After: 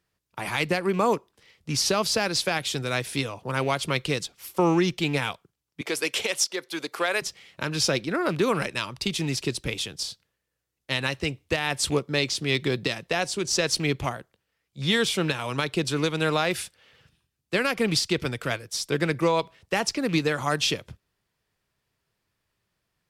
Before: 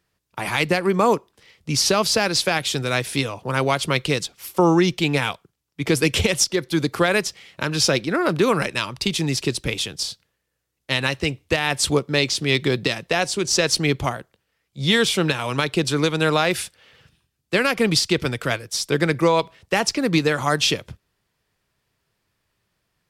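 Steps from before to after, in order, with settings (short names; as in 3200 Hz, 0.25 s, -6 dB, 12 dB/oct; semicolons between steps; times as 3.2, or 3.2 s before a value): rattling part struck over -24 dBFS, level -27 dBFS; 5.81–7.22 HPF 480 Hz 12 dB/oct; gain -5 dB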